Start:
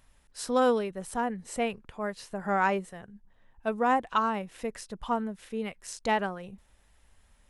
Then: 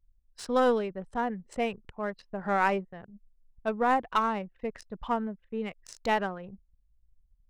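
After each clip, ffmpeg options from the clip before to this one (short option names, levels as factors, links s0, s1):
-af "adynamicsmooth=sensitivity=7.5:basefreq=4000,aeval=exprs='0.211*(cos(1*acos(clip(val(0)/0.211,-1,1)))-cos(1*PI/2))+0.0237*(cos(2*acos(clip(val(0)/0.211,-1,1)))-cos(2*PI/2))':c=same,anlmdn=0.0158"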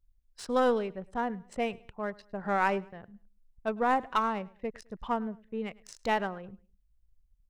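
-af "aecho=1:1:105|210:0.0708|0.0248,volume=0.841"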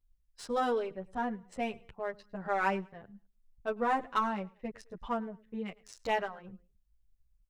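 -filter_complex "[0:a]asplit=2[s0][s1];[s1]adelay=9.4,afreqshift=-2.4[s2];[s0][s2]amix=inputs=2:normalize=1"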